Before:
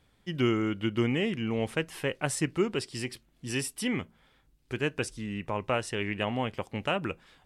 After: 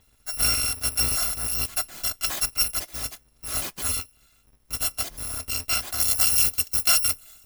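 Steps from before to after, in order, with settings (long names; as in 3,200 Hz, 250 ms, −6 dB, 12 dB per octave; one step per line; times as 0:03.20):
samples in bit-reversed order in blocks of 256 samples
high-shelf EQ 4,900 Hz −4.5 dB, from 0:06.00 +4.5 dB
level +6.5 dB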